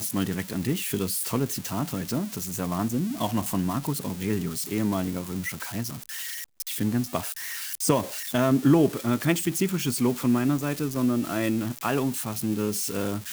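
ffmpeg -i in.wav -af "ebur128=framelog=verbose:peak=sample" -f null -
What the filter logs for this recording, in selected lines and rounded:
Integrated loudness:
  I:         -26.8 LUFS
  Threshold: -36.7 LUFS
Loudness range:
  LRA:         5.7 LU
  Threshold: -46.6 LUFS
  LRA low:   -29.6 LUFS
  LRA high:  -23.9 LUFS
Sample peak:
  Peak:       -8.8 dBFS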